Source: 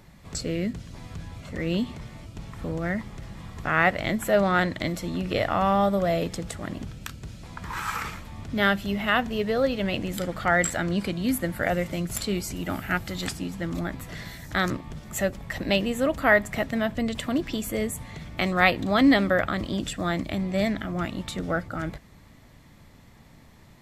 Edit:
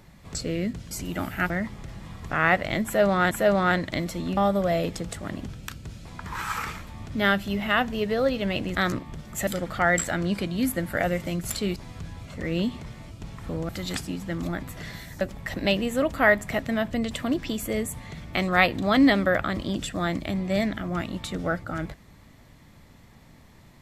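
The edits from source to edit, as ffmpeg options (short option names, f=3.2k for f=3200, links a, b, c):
-filter_complex "[0:a]asplit=10[a][b][c][d][e][f][g][h][i][j];[a]atrim=end=0.912[k];[b]atrim=start=12.418:end=13.012[l];[c]atrim=start=2.838:end=4.652[m];[d]atrim=start=4.188:end=5.252[n];[e]atrim=start=5.748:end=10.132[o];[f]atrim=start=14.528:end=15.252[p];[g]atrim=start=10.128:end=12.422[q];[h]atrim=start=0.908:end=2.842[r];[i]atrim=start=13.008:end=14.532[s];[j]atrim=start=15.248[t];[k][l]acrossfade=d=0.004:c1=hsin:c2=hsin[u];[u][m]acrossfade=d=0.004:c1=hsin:c2=hsin[v];[v][n]acrossfade=d=0.004:c1=hsin:c2=hsin[w];[w][o]acrossfade=d=0.004:c1=hsin:c2=hsin[x];[x][p]acrossfade=d=0.004:c1=hsin:c2=hsin[y];[y][q]acrossfade=d=0.004:c1=hsin:c2=hsin[z];[z][r]acrossfade=d=0.004:c1=hsin:c2=hsin[aa];[aa][s]acrossfade=d=0.004:c1=hsin:c2=hsin[ab];[ab][t]acrossfade=d=0.004:c1=hsin:c2=hsin"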